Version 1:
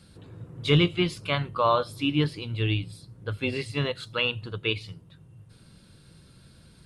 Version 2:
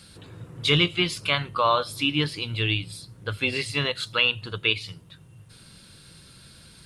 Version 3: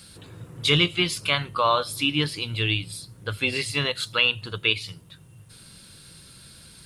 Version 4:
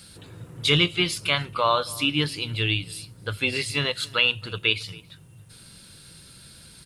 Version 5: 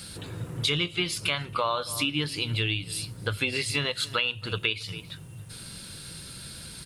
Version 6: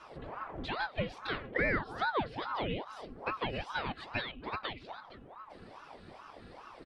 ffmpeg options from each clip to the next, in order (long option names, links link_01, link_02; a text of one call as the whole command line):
ffmpeg -i in.wav -filter_complex "[0:a]tiltshelf=frequency=1100:gain=-5,asplit=2[link_01][link_02];[link_02]acompressor=threshold=-31dB:ratio=6,volume=-1dB[link_03];[link_01][link_03]amix=inputs=2:normalize=0" out.wav
ffmpeg -i in.wav -af "highshelf=frequency=7900:gain=8.5" out.wav
ffmpeg -i in.wav -filter_complex "[0:a]bandreject=frequency=1100:width=24,asplit=2[link_01][link_02];[link_02]adelay=274.1,volume=-22dB,highshelf=frequency=4000:gain=-6.17[link_03];[link_01][link_03]amix=inputs=2:normalize=0" out.wav
ffmpeg -i in.wav -af "acompressor=threshold=-32dB:ratio=4,volume=6dB" out.wav
ffmpeg -i in.wav -af "lowpass=1400,aecho=1:1:3.3:0.98,aeval=exprs='val(0)*sin(2*PI*670*n/s+670*0.8/2.4*sin(2*PI*2.4*n/s))':channel_layout=same,volume=-2.5dB" out.wav